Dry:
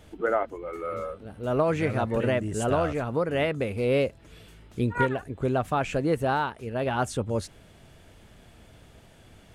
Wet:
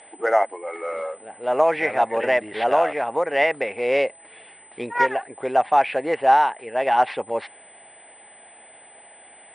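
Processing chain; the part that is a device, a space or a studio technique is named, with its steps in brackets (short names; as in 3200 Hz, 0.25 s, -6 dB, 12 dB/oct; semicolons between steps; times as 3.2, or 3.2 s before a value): toy sound module (decimation joined by straight lines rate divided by 4×; pulse-width modulation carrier 8100 Hz; speaker cabinet 600–4800 Hz, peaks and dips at 800 Hz +9 dB, 1300 Hz -8 dB, 2000 Hz +7 dB, 4200 Hz -3 dB); gain +7.5 dB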